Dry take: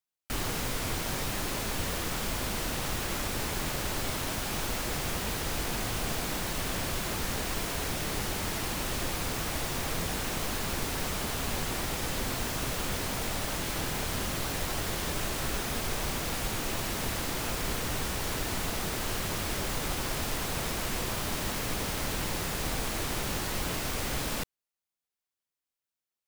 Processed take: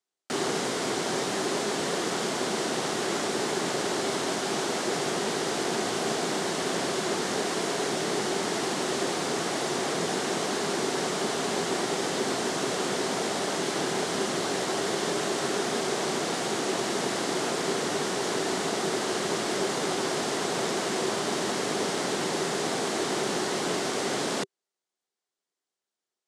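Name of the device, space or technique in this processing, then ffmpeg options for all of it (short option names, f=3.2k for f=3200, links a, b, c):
television speaker: -af "highpass=f=170:w=0.5412,highpass=f=170:w=1.3066,equalizer=f=390:t=q:w=4:g=10,equalizer=f=710:t=q:w=4:g=4,equalizer=f=2.5k:t=q:w=4:g=-5,lowpass=f=8.8k:w=0.5412,lowpass=f=8.8k:w=1.3066,volume=4.5dB"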